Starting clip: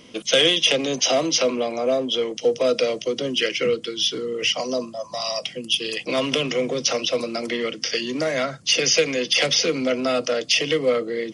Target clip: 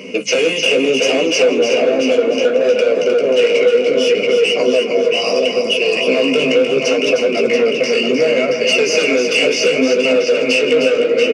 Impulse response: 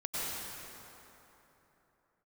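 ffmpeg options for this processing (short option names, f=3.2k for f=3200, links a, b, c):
-filter_complex "[0:a]asplit=2[a][b];[b]adelay=680,lowpass=f=4.1k:p=1,volume=-5.5dB,asplit=2[c][d];[d]adelay=680,lowpass=f=4.1k:p=1,volume=0.53,asplit=2[e][f];[f]adelay=680,lowpass=f=4.1k:p=1,volume=0.53,asplit=2[g][h];[h]adelay=680,lowpass=f=4.1k:p=1,volume=0.53,asplit=2[i][j];[j]adelay=680,lowpass=f=4.1k:p=1,volume=0.53,asplit=2[k][l];[l]adelay=680,lowpass=f=4.1k:p=1,volume=0.53,asplit=2[m][n];[n]adelay=680,lowpass=f=4.1k:p=1,volume=0.53[o];[c][e][g][i][k][m][o]amix=inputs=7:normalize=0[p];[a][p]amix=inputs=2:normalize=0,asoftclip=type=tanh:threshold=-19.5dB,superequalizer=7b=3.55:12b=3.55:13b=0.282,aeval=exprs='0.531*sin(PI/2*1.41*val(0)/0.531)':c=same,flanger=delay=9.6:depth=9.7:regen=20:speed=0.69:shape=sinusoidal,highpass=150,equalizer=f=190:t=q:w=4:g=9,equalizer=f=270:t=q:w=4:g=8,equalizer=f=600:t=q:w=4:g=8,lowpass=f=8.8k:w=0.5412,lowpass=f=8.8k:w=1.3066,acompressor=threshold=-20dB:ratio=2.5,asplit=2[q][r];[r]aecho=0:1:163|308:0.106|0.473[s];[q][s]amix=inputs=2:normalize=0,volume=5dB"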